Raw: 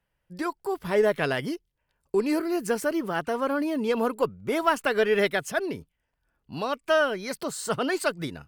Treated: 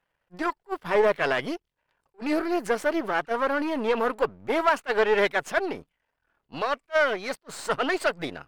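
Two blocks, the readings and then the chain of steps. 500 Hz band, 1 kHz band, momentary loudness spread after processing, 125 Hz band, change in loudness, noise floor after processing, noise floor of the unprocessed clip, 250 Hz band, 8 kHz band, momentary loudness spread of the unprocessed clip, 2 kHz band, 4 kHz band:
0.0 dB, +2.5 dB, 12 LU, -6.0 dB, +0.5 dB, -81 dBFS, -78 dBFS, -2.0 dB, -5.0 dB, 10 LU, +2.5 dB, -0.5 dB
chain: partial rectifier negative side -12 dB; overdrive pedal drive 16 dB, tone 1.8 kHz, clips at -7.5 dBFS; attacks held to a fixed rise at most 560 dB/s

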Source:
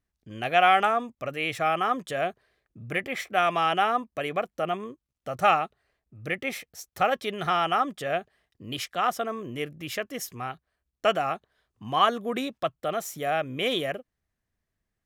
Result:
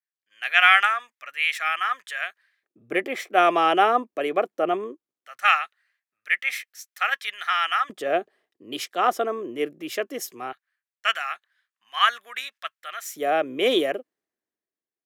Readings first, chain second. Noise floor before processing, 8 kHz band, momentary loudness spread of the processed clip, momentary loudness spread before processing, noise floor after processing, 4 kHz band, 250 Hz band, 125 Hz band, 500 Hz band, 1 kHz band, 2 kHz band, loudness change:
-84 dBFS, +2.0 dB, 16 LU, 14 LU, under -85 dBFS, +4.5 dB, +1.5 dB, under -10 dB, +2.0 dB, +1.5 dB, +7.5 dB, +4.0 dB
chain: LFO high-pass square 0.19 Hz 340–1700 Hz; three bands expanded up and down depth 40%; trim +2 dB

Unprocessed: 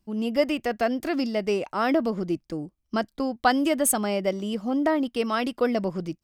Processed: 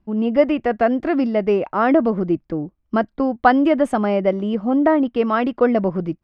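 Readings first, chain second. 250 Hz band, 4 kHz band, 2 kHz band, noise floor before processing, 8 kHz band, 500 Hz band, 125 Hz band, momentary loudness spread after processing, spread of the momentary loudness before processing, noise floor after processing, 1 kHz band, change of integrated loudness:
+7.5 dB, -3.5 dB, +4.5 dB, -73 dBFS, under -20 dB, +7.5 dB, +7.5 dB, 7 LU, 8 LU, -66 dBFS, +7.0 dB, +6.5 dB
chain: low-pass 1.8 kHz 12 dB/octave; trim +7.5 dB

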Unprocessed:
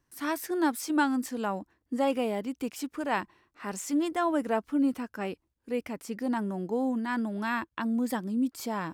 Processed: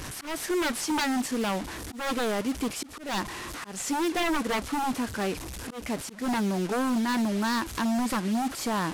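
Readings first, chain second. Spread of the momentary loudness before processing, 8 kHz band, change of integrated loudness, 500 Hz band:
10 LU, +7.5 dB, +1.5 dB, +0.5 dB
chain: one-bit delta coder 64 kbps, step -37.5 dBFS; wavefolder -27.5 dBFS; slow attack 193 ms; trim +6 dB

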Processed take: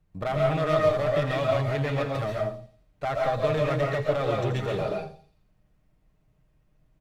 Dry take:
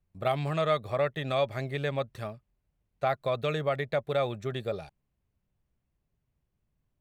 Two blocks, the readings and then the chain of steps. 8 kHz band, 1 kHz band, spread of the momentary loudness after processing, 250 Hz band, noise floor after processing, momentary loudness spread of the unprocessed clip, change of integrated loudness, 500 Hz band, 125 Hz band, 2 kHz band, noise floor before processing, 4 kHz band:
no reading, +3.5 dB, 9 LU, +5.5 dB, -67 dBFS, 8 LU, +4.0 dB, +5.0 dB, +6.0 dB, +3.5 dB, -80 dBFS, +1.0 dB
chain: treble shelf 4.7 kHz -10.5 dB; comb 6.5 ms, depth 37%; in parallel at +1 dB: compressor with a negative ratio -36 dBFS, ratio -1; on the sum: one-sided clip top -25.5 dBFS; on a send: feedback echo behind a high-pass 84 ms, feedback 51%, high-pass 4.5 kHz, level -8 dB; on the sum: algorithmic reverb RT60 0.46 s, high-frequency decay 0.45×, pre-delay 95 ms, DRR -1.5 dB; trim -1.5 dB

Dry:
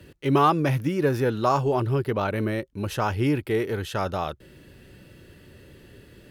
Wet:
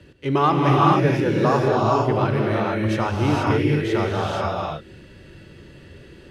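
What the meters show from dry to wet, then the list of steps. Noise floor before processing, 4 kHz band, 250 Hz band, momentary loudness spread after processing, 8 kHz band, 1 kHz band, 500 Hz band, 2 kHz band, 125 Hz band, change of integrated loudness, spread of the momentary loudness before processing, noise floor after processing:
-52 dBFS, +5.0 dB, +5.0 dB, 8 LU, +1.0 dB, +5.0 dB, +4.0 dB, +5.0 dB, +5.0 dB, +4.5 dB, 9 LU, -47 dBFS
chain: low-pass 6.6 kHz 12 dB/octave; gated-style reverb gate 500 ms rising, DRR -3.5 dB

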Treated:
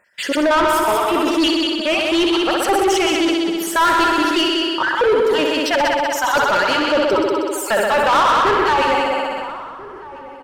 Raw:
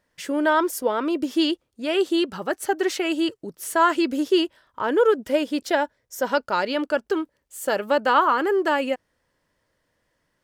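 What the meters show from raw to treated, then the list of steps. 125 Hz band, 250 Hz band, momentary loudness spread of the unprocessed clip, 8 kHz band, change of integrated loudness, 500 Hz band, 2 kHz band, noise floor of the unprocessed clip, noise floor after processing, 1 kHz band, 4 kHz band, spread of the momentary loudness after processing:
no reading, +5.0 dB, 9 LU, +9.0 dB, +6.5 dB, +5.5 dB, +8.5 dB, -73 dBFS, -34 dBFS, +8.0 dB, +11.0 dB, 8 LU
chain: random holes in the spectrogram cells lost 37%; on a send: multi-head delay 63 ms, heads all three, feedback 53%, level -8.5 dB; on the sum: overdrive pedal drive 24 dB, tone 4 kHz, clips at -4.5 dBFS; echo from a far wall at 230 m, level -17 dB; decay stretcher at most 24 dB/s; trim -3 dB

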